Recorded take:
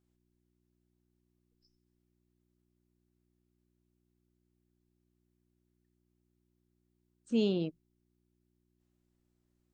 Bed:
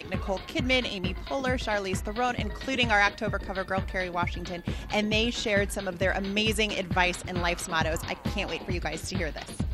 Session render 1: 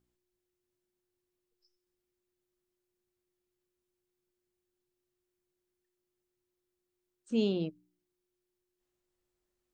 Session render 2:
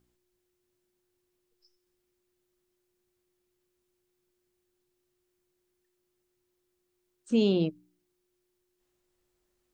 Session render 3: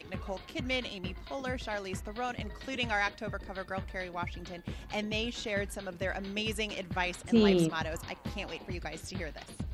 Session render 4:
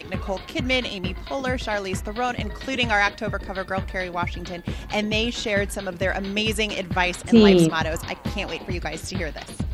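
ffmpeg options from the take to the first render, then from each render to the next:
-af "bandreject=f=60:t=h:w=4,bandreject=f=120:t=h:w=4,bandreject=f=180:t=h:w=4,bandreject=f=240:t=h:w=4,bandreject=f=300:t=h:w=4"
-af "acontrast=75,alimiter=limit=-16dB:level=0:latency=1"
-filter_complex "[1:a]volume=-8dB[a];[0:a][a]amix=inputs=2:normalize=0"
-af "volume=10.5dB"

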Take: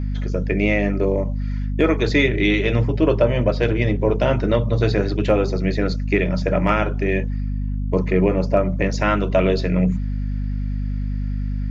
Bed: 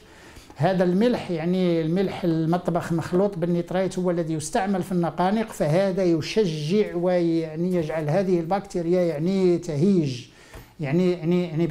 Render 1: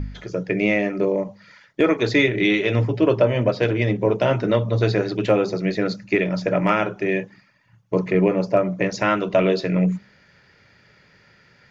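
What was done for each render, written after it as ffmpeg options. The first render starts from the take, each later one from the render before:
-af "bandreject=f=50:t=h:w=4,bandreject=f=100:t=h:w=4,bandreject=f=150:t=h:w=4,bandreject=f=200:t=h:w=4,bandreject=f=250:t=h:w=4"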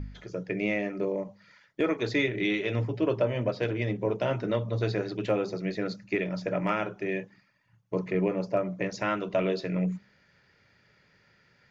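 -af "volume=-9dB"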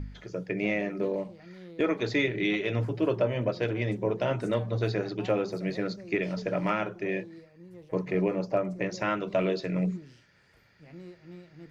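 -filter_complex "[1:a]volume=-25dB[a];[0:a][a]amix=inputs=2:normalize=0"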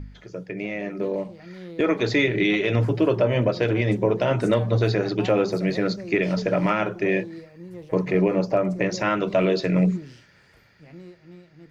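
-af "alimiter=limit=-19.5dB:level=0:latency=1:release=92,dynaudnorm=f=160:g=17:m=9dB"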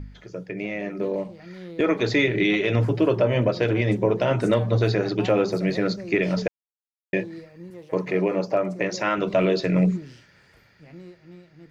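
-filter_complex "[0:a]asettb=1/sr,asplit=3[a][b][c];[a]atrim=end=7.704[d];[b]atrim=start=7.7:end=9.18,asetpts=PTS-STARTPTS,afade=t=in:d=0.004:c=qsin,afade=t=out:st=1.476:d=0.004:c=qsin,highpass=f=280:p=1[e];[c]atrim=start=9.176[f];[d][e]acrossfade=d=0.004:c1=hsin:c2=qsin[g];[g][f]acrossfade=d=0.004:c1=qsin:c2=hsin,asplit=3[h][i][j];[h]atrim=end=6.48,asetpts=PTS-STARTPTS,afade=t=out:st=6.476:d=0.004:c=hsin[k];[i]atrim=start=6.48:end=7.13,asetpts=PTS-STARTPTS,volume=0[l];[j]atrim=start=7.13,asetpts=PTS-STARTPTS,afade=t=in:d=0.004:c=hsin[m];[k][l][m]concat=n=3:v=0:a=1"

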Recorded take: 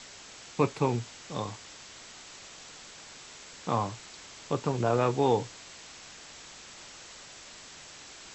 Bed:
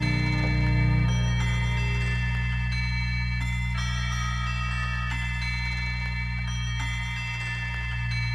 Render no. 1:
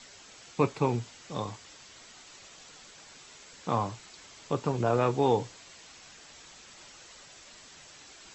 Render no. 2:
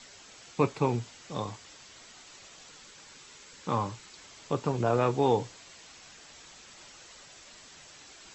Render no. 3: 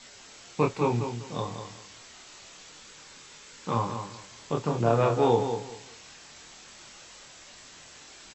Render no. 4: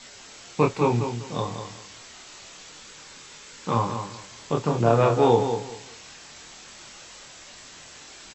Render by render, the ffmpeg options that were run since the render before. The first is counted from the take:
-af "afftdn=nr=6:nf=-49"
-filter_complex "[0:a]asettb=1/sr,asplit=3[a][b][c];[a]atrim=end=2.704[d];[b]atrim=start=2.7:end=4.14,asetpts=PTS-STARTPTS,afade=t=in:d=0.004:c=qsin,afade=t=out:st=1.436:d=0.004:c=qsin,bandreject=f=690:w=5.3[e];[c]atrim=start=4.136[f];[d][e]acrossfade=d=0.004:c1=hsin:c2=qsin[g];[g][f]acrossfade=d=0.004:c1=qsin:c2=hsin"
-filter_complex "[0:a]asplit=2[a][b];[b]adelay=26,volume=-3.5dB[c];[a][c]amix=inputs=2:normalize=0,aecho=1:1:194|388|582:0.398|0.0916|0.0211"
-af "volume=4dB"

